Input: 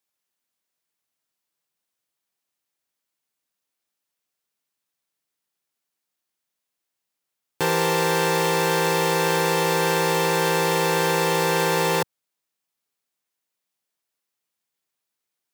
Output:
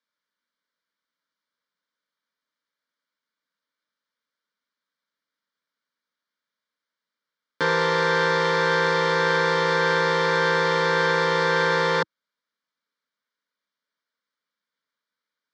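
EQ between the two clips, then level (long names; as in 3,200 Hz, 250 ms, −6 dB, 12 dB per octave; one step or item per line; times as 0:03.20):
loudspeaker in its box 120–4,900 Hz, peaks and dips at 320 Hz +8 dB, 910 Hz +4 dB, 1,500 Hz +5 dB, 2,400 Hz +9 dB
parametric band 2,900 Hz +8.5 dB 1.3 octaves
phaser with its sweep stopped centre 520 Hz, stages 8
0.0 dB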